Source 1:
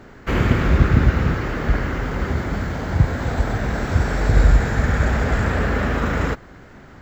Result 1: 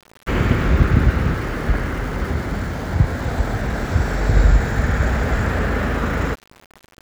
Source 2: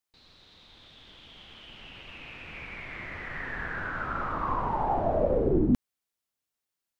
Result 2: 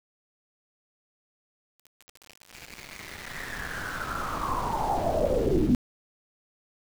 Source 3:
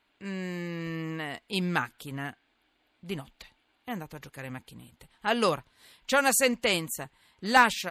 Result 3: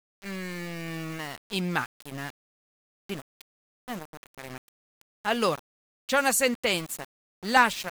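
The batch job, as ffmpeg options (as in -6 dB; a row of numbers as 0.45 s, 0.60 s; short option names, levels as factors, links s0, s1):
-af "aeval=exprs='val(0)*gte(abs(val(0)),0.0158)':c=same"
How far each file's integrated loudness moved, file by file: 0.0 LU, +1.0 LU, 0.0 LU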